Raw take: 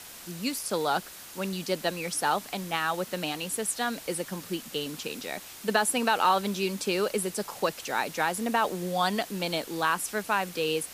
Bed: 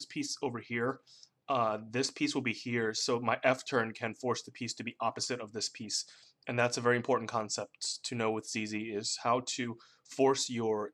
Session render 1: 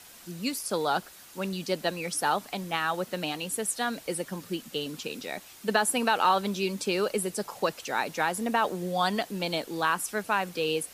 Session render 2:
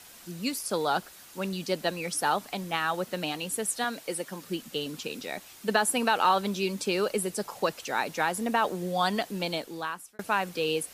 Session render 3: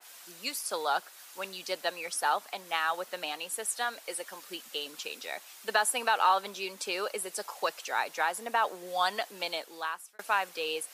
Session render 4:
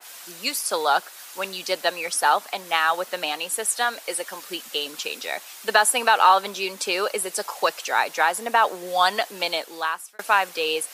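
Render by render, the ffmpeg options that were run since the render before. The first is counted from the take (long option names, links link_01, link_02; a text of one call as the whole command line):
ffmpeg -i in.wav -af "afftdn=noise_reduction=6:noise_floor=-45" out.wav
ffmpeg -i in.wav -filter_complex "[0:a]asettb=1/sr,asplit=3[link_01][link_02][link_03];[link_01]atrim=end=3.844[link_04];[link_02]atrim=start=3.84:end=4.48,asetpts=PTS-STARTPTS,afade=type=in:duration=0.004:curve=qsin,afade=type=out:start_time=0.636:duration=0.004:curve=qsin,highpass=frequency=260:poles=1[link_05];[link_03]atrim=start=4.476[link_06];[link_04][link_05]acrossfade=duration=0.004:curve1=hsin:curve2=qsin[link_07];[link_07][link_06]acrossfade=duration=0.004:curve1=qsin:curve2=hsin,asplit=2[link_08][link_09];[link_08]atrim=end=10.19,asetpts=PTS-STARTPTS,afade=type=out:start_time=9.42:duration=0.77[link_10];[link_09]atrim=start=10.19,asetpts=PTS-STARTPTS,afade=type=in:duration=0.004:curve=hsin[link_11];[link_10][link_11]concat=n=2:v=0:a=1" out.wav
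ffmpeg -i in.wav -af "highpass=650,adynamicequalizer=threshold=0.00794:dfrequency=1900:dqfactor=0.7:tfrequency=1900:tqfactor=0.7:attack=5:release=100:ratio=0.375:range=2:mode=cutabove:tftype=highshelf" out.wav
ffmpeg -i in.wav -af "volume=9dB" out.wav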